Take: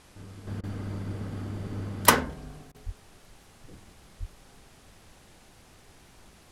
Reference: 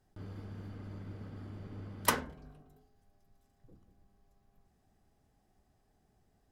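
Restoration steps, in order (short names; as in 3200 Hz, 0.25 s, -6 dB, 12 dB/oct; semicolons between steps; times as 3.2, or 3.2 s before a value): 2.85–2.97 HPF 140 Hz 24 dB/oct; 4.19–4.31 HPF 140 Hz 24 dB/oct; interpolate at 0.61/2.72, 24 ms; noise print and reduce 17 dB; 0.47 gain correction -10.5 dB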